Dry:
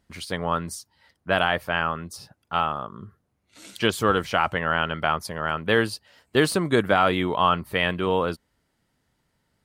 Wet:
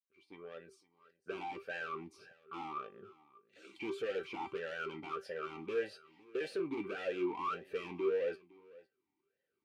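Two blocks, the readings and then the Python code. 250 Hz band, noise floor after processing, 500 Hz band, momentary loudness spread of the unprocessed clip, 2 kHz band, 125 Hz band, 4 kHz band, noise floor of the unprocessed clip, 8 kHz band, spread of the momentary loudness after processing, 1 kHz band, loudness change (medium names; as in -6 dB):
-16.0 dB, under -85 dBFS, -12.5 dB, 14 LU, -19.0 dB, -27.0 dB, -23.0 dB, -73 dBFS, under -25 dB, 21 LU, -19.0 dB, -16.0 dB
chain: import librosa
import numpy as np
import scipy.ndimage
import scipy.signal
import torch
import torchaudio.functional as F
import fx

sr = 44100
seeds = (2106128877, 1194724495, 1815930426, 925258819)

y = fx.fade_in_head(x, sr, length_s=1.69)
y = np.clip(10.0 ** (23.5 / 20.0) * y, -1.0, 1.0) / 10.0 ** (23.5 / 20.0)
y = fx.comb_fb(y, sr, f0_hz=390.0, decay_s=0.16, harmonics='all', damping=0.0, mix_pct=80)
y = 10.0 ** (-34.5 / 20.0) * np.tanh(y / 10.0 ** (-34.5 / 20.0))
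y = fx.leveller(y, sr, passes=1)
y = y + 10.0 ** (-21.0 / 20.0) * np.pad(y, (int(509 * sr / 1000.0), 0))[:len(y)]
y = fx.vowel_sweep(y, sr, vowels='e-u', hz=1.7)
y = F.gain(torch.from_numpy(y), 11.0).numpy()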